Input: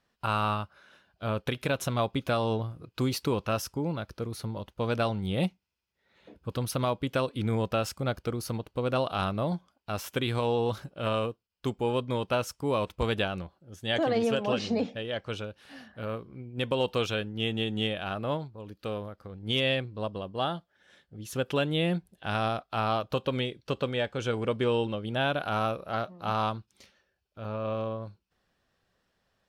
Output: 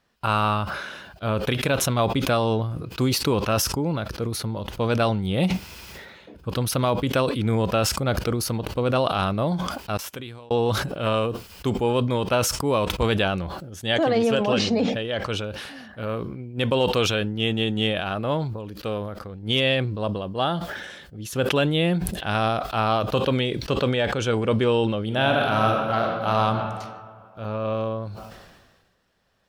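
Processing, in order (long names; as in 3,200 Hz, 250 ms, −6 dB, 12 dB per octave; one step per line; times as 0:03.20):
0:09.97–0:10.51: gate with flip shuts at −32 dBFS, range −40 dB
0:25.01–0:26.33: thrown reverb, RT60 2.6 s, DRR 2.5 dB
level that may fall only so fast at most 40 dB per second
level +5.5 dB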